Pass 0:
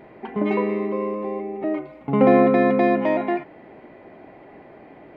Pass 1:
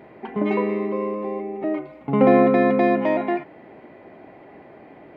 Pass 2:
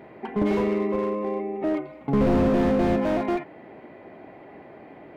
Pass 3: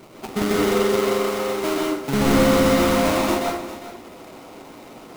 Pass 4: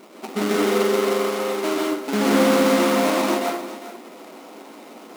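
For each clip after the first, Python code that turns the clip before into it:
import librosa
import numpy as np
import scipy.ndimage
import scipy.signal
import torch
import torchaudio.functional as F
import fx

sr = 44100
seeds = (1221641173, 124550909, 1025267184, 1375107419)

y1 = scipy.signal.sosfilt(scipy.signal.butter(2, 54.0, 'highpass', fs=sr, output='sos'), x)
y2 = fx.slew_limit(y1, sr, full_power_hz=46.0)
y3 = fx.sample_hold(y2, sr, seeds[0], rate_hz=1700.0, jitter_pct=20)
y3 = y3 + 10.0 ** (-13.5 / 20.0) * np.pad(y3, (int(400 * sr / 1000.0), 0))[:len(y3)]
y3 = fx.rev_plate(y3, sr, seeds[1], rt60_s=0.52, hf_ratio=0.6, predelay_ms=115, drr_db=-1.5)
y4 = fx.sample_hold(y3, sr, seeds[2], rate_hz=12000.0, jitter_pct=0)
y4 = fx.brickwall_highpass(y4, sr, low_hz=180.0)
y4 = fx.doppler_dist(y4, sr, depth_ms=0.14)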